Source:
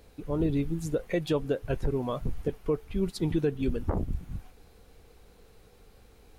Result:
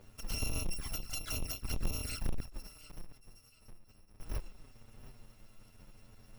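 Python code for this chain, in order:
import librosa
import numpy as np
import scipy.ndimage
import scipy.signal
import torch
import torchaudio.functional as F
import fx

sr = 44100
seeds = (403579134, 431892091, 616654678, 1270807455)

p1 = fx.bit_reversed(x, sr, seeds[0], block=256)
p2 = fx.gate_flip(p1, sr, shuts_db=-33.0, range_db=-30, at=(2.4, 4.2))
p3 = p2 + fx.echo_feedback(p2, sr, ms=714, feedback_pct=27, wet_db=-16.5, dry=0)
p4 = fx.env_flanger(p3, sr, rest_ms=10.9, full_db=-25.0)
p5 = 10.0 ** (-33.5 / 20.0) * (np.abs((p4 / 10.0 ** (-33.5 / 20.0) + 3.0) % 4.0 - 2.0) - 1.0)
p6 = p4 + (p5 * 10.0 ** (-9.0 / 20.0))
p7 = fx.lowpass(p6, sr, hz=2200.0, slope=6)
p8 = 10.0 ** (-27.0 / 20.0) * np.tanh(p7 / 10.0 ** (-27.0 / 20.0))
y = p8 * 10.0 ** (2.5 / 20.0)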